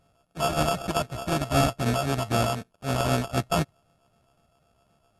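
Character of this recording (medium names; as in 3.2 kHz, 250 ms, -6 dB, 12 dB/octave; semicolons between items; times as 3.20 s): a buzz of ramps at a fixed pitch in blocks of 64 samples; phasing stages 4, 3.9 Hz, lowest notch 280–2600 Hz; aliases and images of a low sample rate 2 kHz, jitter 0%; MP2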